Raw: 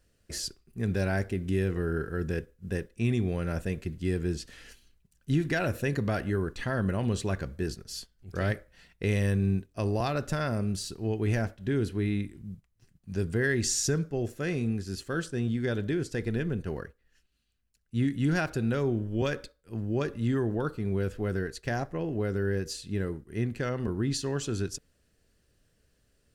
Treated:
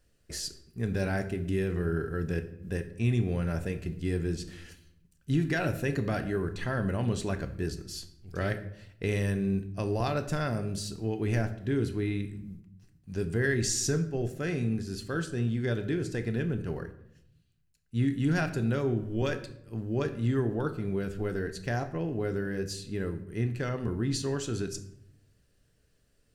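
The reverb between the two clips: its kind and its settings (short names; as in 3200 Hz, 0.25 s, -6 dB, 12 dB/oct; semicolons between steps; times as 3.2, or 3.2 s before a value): shoebox room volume 180 m³, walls mixed, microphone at 0.37 m; gain -1.5 dB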